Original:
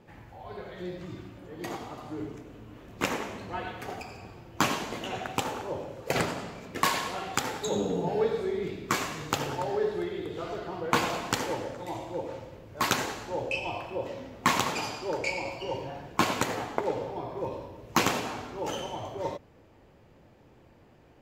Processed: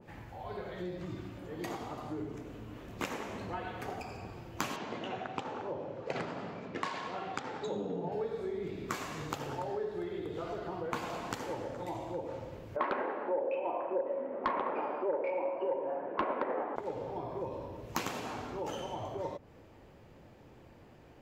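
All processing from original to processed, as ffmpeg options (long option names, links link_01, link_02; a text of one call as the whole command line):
ffmpeg -i in.wav -filter_complex "[0:a]asettb=1/sr,asplit=3[link_01][link_02][link_03];[link_01]atrim=end=4.764[link_04];[link_02]atrim=start=4.76:end=8.12,asetpts=PTS-STARTPTS,afade=type=in:duration=0.004:curve=qsin,afade=type=out:start_time=3.356:duration=0.004:curve=qsin,adynamicsmooth=sensitivity=2.5:basefreq=5100,highpass=120,lowpass=6800[link_05];[link_03]atrim=start=8.116[link_06];[link_04][link_05]acrossfade=duration=0.004:curve1=hsin:curve2=qsin[link_07];[link_07][link_06]acrossfade=duration=0.004:curve1=qsin:curve2=hsin,asettb=1/sr,asplit=3[link_08][link_09][link_10];[link_08]atrim=end=12.764[link_11];[link_09]atrim=start=12.76:end=16.76,asetpts=PTS-STARTPTS,afade=type=in:duration=0.004:curve=qsin,afade=type=out:start_time=3.996:duration=0.004:curve=qsin,highpass=frequency=240:width=0.5412,highpass=frequency=240:width=1.3066,equalizer=frequency=380:width_type=q:width=4:gain=4,equalizer=frequency=560:width_type=q:width=4:gain=9,equalizer=frequency=1000:width_type=q:width=4:gain=4,lowpass=frequency=2000:width=0.5412,lowpass=frequency=2000:width=1.3066,aeval=exprs='0.398*sin(PI/2*1.78*val(0)/0.398)':channel_layout=same[link_12];[link_10]atrim=start=16.756[link_13];[link_11][link_12]acrossfade=duration=0.004:curve1=hsin:curve2=qsin[link_14];[link_14][link_13]acrossfade=duration=0.004:curve1=qsin:curve2=hsin,acompressor=threshold=-37dB:ratio=3,adynamicequalizer=threshold=0.00251:dfrequency=1700:dqfactor=0.7:tfrequency=1700:tqfactor=0.7:attack=5:release=100:ratio=0.375:range=2.5:mode=cutabove:tftype=highshelf,volume=1dB" out.wav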